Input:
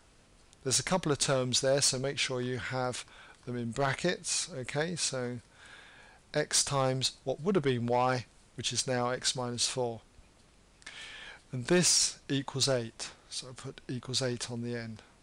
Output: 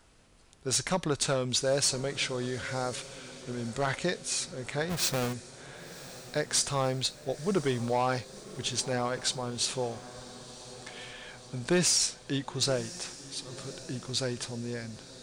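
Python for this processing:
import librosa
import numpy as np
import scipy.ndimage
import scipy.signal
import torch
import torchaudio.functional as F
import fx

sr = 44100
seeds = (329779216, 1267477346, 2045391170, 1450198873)

y = fx.halfwave_hold(x, sr, at=(4.89, 5.32), fade=0.02)
y = fx.echo_diffused(y, sr, ms=1046, feedback_pct=60, wet_db=-16)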